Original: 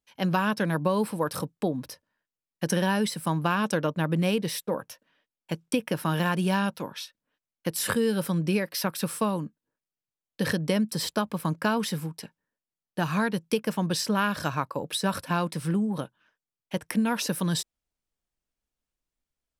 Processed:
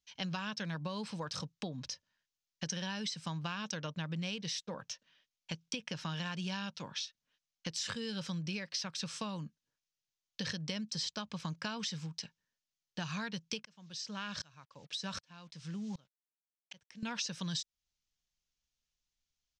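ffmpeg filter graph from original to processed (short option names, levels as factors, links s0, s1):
-filter_complex "[0:a]asettb=1/sr,asplit=3[s0][s1][s2];[s0]atrim=end=13.654[s3];[s1]atrim=start=13.65:end=17.03,asetpts=PTS-STARTPTS,afade=t=in:d=0.004:c=qsin,afade=t=out:st=3.376:d=0.004:c=qsin,acrusher=bits=7:mix=0:aa=0.5,aeval=exprs='val(0)*pow(10,-30*if(lt(mod(-1.3*n/s,1),2*abs(-1.3)/1000),1-mod(-1.3*n/s,1)/(2*abs(-1.3)/1000),(mod(-1.3*n/s,1)-2*abs(-1.3)/1000)/(1-2*abs(-1.3)/1000))/20)':c=same[s4];[s2]atrim=start=17.026[s5];[s3][s4]acrossfade=d=0.004:c1=hsin:c2=qsin[s6];[s6][s5]acrossfade=d=0.004:c1=qsin:c2=hsin,firequalizer=gain_entry='entry(150,0);entry(310,-10);entry(620,-6);entry(3100,7);entry(6400,10);entry(11000,-28)':delay=0.05:min_phase=1,acompressor=threshold=0.0158:ratio=3,volume=0.75"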